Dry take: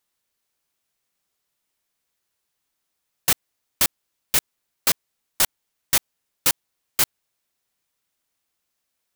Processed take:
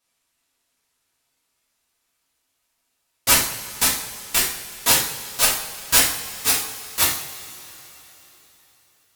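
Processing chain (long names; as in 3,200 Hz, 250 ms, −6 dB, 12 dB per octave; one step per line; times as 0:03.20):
pitch glide at a constant tempo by −8 semitones ending unshifted
coupled-rooms reverb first 0.53 s, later 3.9 s, from −19 dB, DRR −7.5 dB
level −1.5 dB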